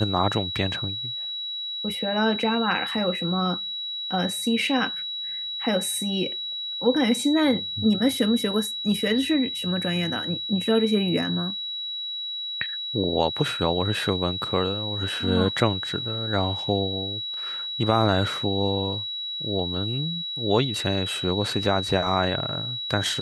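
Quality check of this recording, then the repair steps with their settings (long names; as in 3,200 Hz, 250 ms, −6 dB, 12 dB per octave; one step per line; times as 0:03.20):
whistle 3,900 Hz −29 dBFS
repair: notch filter 3,900 Hz, Q 30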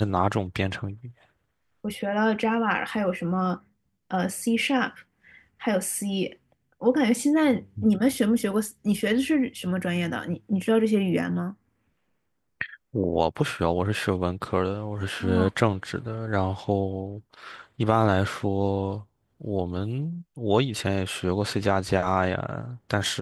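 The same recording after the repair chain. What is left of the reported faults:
none of them is left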